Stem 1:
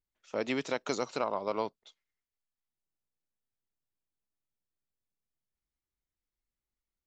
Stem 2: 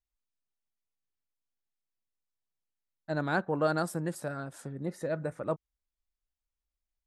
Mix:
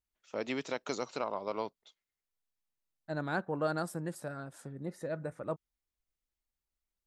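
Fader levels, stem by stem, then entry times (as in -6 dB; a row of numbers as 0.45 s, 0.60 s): -3.5 dB, -4.5 dB; 0.00 s, 0.00 s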